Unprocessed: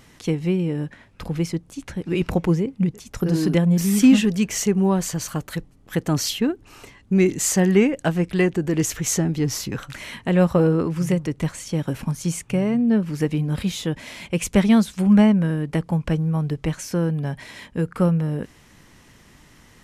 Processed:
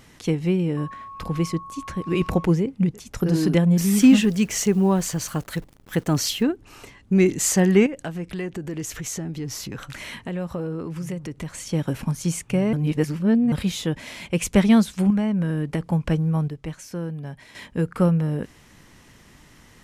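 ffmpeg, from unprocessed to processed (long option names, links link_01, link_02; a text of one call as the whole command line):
ffmpeg -i in.wav -filter_complex "[0:a]asettb=1/sr,asplit=3[link_01][link_02][link_03];[link_01]atrim=end=0.774[link_04];[link_02]atrim=start=0.77:end=2.45,asetpts=PTS-STARTPTS,afade=type=in:duration=0.004:curve=qsin,afade=type=out:start_time=1.676:duration=0.004:curve=qsin,aeval=exprs='val(0)+0.0158*sin(2*PI*1100*n/s)':channel_layout=same[link_05];[link_03]atrim=start=2.446[link_06];[link_04][link_05]acrossfade=duration=0.004:curve1=hsin:curve2=qsin[link_07];[link_07][link_06]acrossfade=duration=0.004:curve1=qsin:curve2=hsin,asettb=1/sr,asplit=3[link_08][link_09][link_10];[link_08]atrim=end=3.924[link_11];[link_09]atrim=start=3.92:end=6.43,asetpts=PTS-STARTPTS,afade=type=in:duration=0.004:curve=qsin,afade=type=out:start_time=2.506:duration=0.004:curve=qsin,acrusher=bits=9:dc=4:mix=0:aa=0.000001[link_12];[link_10]atrim=start=6.426[link_13];[link_11][link_12]acrossfade=duration=0.004:curve1=hsin:curve2=qsin[link_14];[link_14][link_13]acrossfade=duration=0.004:curve1=qsin:curve2=hsin,asettb=1/sr,asplit=3[link_15][link_16][link_17];[link_15]atrim=end=7.864[link_18];[link_16]atrim=start=7.86:end=11.59,asetpts=PTS-STARTPTS,afade=type=in:duration=0.004:curve=qsin,afade=type=out:start_time=3.726:duration=0.004:curve=qsin,acompressor=threshold=-31dB:ratio=2.5:attack=3.2:release=140:knee=1:detection=peak[link_19];[link_17]atrim=start=11.586[link_20];[link_18][link_19]acrossfade=duration=0.004:curve1=hsin:curve2=qsin[link_21];[link_21][link_20]acrossfade=duration=0.004:curve1=qsin:curve2=hsin,asettb=1/sr,asplit=3[link_22][link_23][link_24];[link_22]atrim=end=15.104[link_25];[link_23]atrim=start=15.1:end=15.88,asetpts=PTS-STARTPTS,afade=type=in:duration=0.004:curve=qsin,afade=type=out:start_time=0.776:duration=0.004:curve=qsin,acompressor=threshold=-19dB:ratio=6:attack=3.2:release=140:knee=1:detection=peak[link_26];[link_24]atrim=start=15.876[link_27];[link_25][link_26]acrossfade=duration=0.004:curve1=hsin:curve2=qsin[link_28];[link_28][link_27]acrossfade=duration=0.004:curve1=qsin:curve2=hsin,asplit=5[link_29][link_30][link_31][link_32][link_33];[link_29]atrim=end=12.732[link_34];[link_30]atrim=start=12.728:end=13.522,asetpts=PTS-STARTPTS,areverse[link_35];[link_31]atrim=start=13.518:end=16.482[link_36];[link_32]atrim=start=16.478:end=17.552,asetpts=PTS-STARTPTS,volume=-8dB[link_37];[link_33]atrim=start=17.548[link_38];[link_34][link_35]acrossfade=duration=0.004:curve1=hsin:curve2=hsin[link_39];[link_39][link_36]acrossfade=duration=0.004:curve1=hsin:curve2=hsin[link_40];[link_40][link_37]acrossfade=duration=0.004:curve1=hsin:curve2=hsin[link_41];[link_41][link_38]acrossfade=duration=0.004:curve1=hsin:curve2=hsin" out.wav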